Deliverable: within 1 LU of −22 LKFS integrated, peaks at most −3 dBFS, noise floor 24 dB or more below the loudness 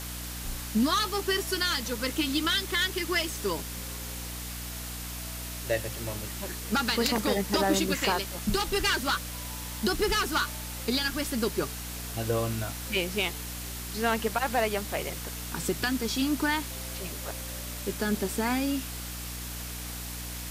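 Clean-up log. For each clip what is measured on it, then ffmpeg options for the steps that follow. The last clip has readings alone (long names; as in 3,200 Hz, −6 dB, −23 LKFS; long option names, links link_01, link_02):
mains hum 60 Hz; hum harmonics up to 300 Hz; level of the hum −38 dBFS; background noise floor −38 dBFS; target noise floor −54 dBFS; integrated loudness −29.5 LKFS; sample peak −12.5 dBFS; target loudness −22.0 LKFS
→ -af "bandreject=frequency=60:width_type=h:width=4,bandreject=frequency=120:width_type=h:width=4,bandreject=frequency=180:width_type=h:width=4,bandreject=frequency=240:width_type=h:width=4,bandreject=frequency=300:width_type=h:width=4"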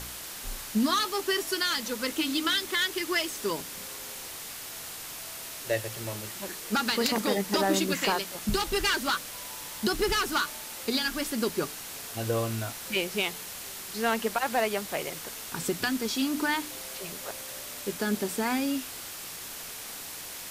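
mains hum none found; background noise floor −41 dBFS; target noise floor −54 dBFS
→ -af "afftdn=noise_reduction=13:noise_floor=-41"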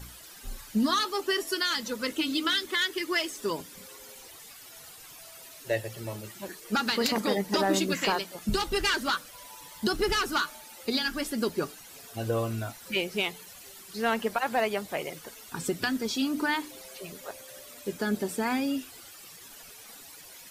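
background noise floor −49 dBFS; target noise floor −53 dBFS
→ -af "afftdn=noise_reduction=6:noise_floor=-49"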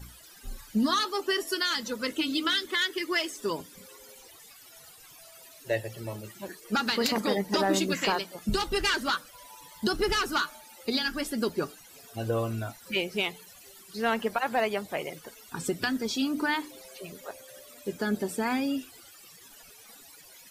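background noise floor −52 dBFS; target noise floor −54 dBFS
→ -af "afftdn=noise_reduction=6:noise_floor=-52"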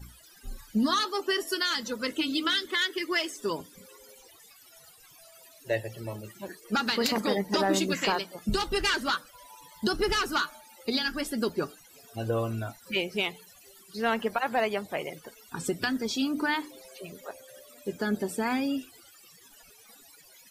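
background noise floor −55 dBFS; integrated loudness −29.5 LKFS; sample peak −13.0 dBFS; target loudness −22.0 LKFS
→ -af "volume=7.5dB"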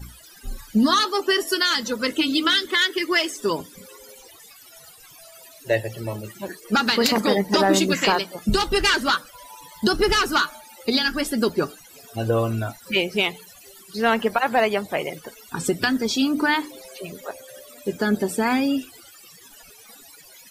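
integrated loudness −22.0 LKFS; sample peak −5.5 dBFS; background noise floor −48 dBFS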